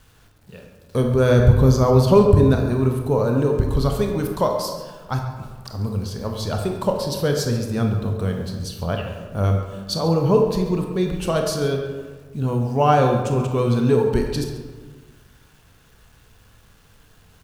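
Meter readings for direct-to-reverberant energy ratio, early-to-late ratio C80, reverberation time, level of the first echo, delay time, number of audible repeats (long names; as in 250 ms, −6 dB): 2.5 dB, 6.0 dB, 1.5 s, −14.5 dB, 138 ms, 1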